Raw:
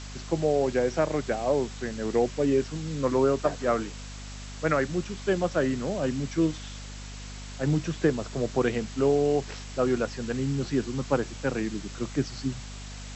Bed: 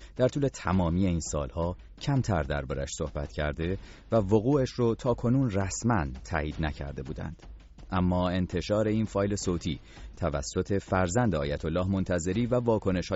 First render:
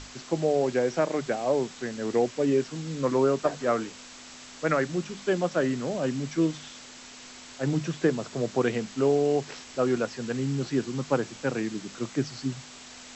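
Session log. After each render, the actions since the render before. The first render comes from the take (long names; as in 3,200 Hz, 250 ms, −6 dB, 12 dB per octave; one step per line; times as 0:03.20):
mains-hum notches 50/100/150/200 Hz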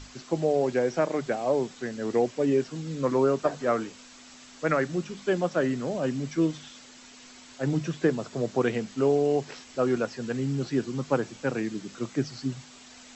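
broadband denoise 6 dB, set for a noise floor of −46 dBFS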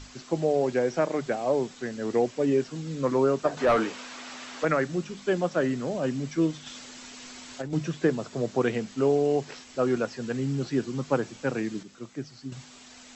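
0:03.57–0:04.65: mid-hump overdrive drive 21 dB, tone 1,700 Hz, clips at −13 dBFS
0:06.66–0:07.73: compressor whose output falls as the input rises −33 dBFS
0:11.83–0:12.52: clip gain −8 dB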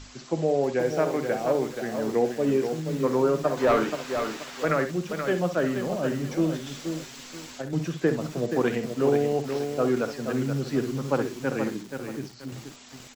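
on a send: ambience of single reflections 50 ms −16 dB, 63 ms −11 dB
on the sum: feedback echo at a low word length 478 ms, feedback 35%, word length 7 bits, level −6.5 dB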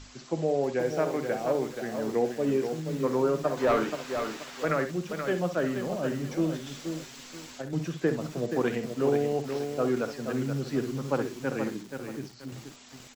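level −3 dB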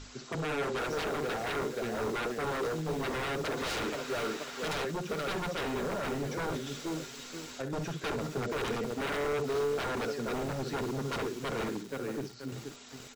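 wave folding −30 dBFS
hollow resonant body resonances 430/1,400/3,800 Hz, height 8 dB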